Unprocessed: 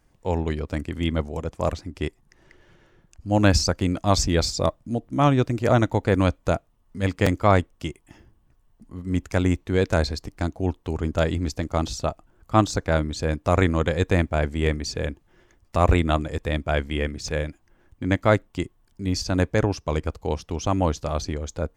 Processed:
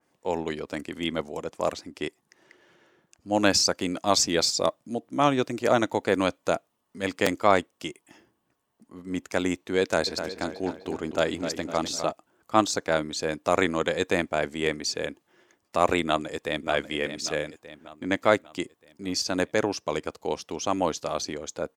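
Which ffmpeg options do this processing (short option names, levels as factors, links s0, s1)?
-filter_complex "[0:a]asplit=3[s0][s1][s2];[s0]afade=t=out:st=10.06:d=0.02[s3];[s1]asplit=2[s4][s5];[s5]adelay=253,lowpass=f=4300:p=1,volume=0.355,asplit=2[s6][s7];[s7]adelay=253,lowpass=f=4300:p=1,volume=0.49,asplit=2[s8][s9];[s9]adelay=253,lowpass=f=4300:p=1,volume=0.49,asplit=2[s10][s11];[s11]adelay=253,lowpass=f=4300:p=1,volume=0.49,asplit=2[s12][s13];[s13]adelay=253,lowpass=f=4300:p=1,volume=0.49,asplit=2[s14][s15];[s15]adelay=253,lowpass=f=4300:p=1,volume=0.49[s16];[s4][s6][s8][s10][s12][s14][s16]amix=inputs=7:normalize=0,afade=t=in:st=10.06:d=0.02,afade=t=out:st=12.1:d=0.02[s17];[s2]afade=t=in:st=12.1:d=0.02[s18];[s3][s17][s18]amix=inputs=3:normalize=0,asplit=2[s19][s20];[s20]afade=t=in:st=16.03:d=0.01,afade=t=out:st=16.69:d=0.01,aecho=0:1:590|1180|1770|2360|2950|3540:0.334965|0.167483|0.0837414|0.0418707|0.0209353|0.0104677[s21];[s19][s21]amix=inputs=2:normalize=0,highpass=270,adynamicequalizer=threshold=0.0126:dfrequency=2500:dqfactor=0.7:tfrequency=2500:tqfactor=0.7:attack=5:release=100:ratio=0.375:range=2:mode=boostabove:tftype=highshelf,volume=0.891"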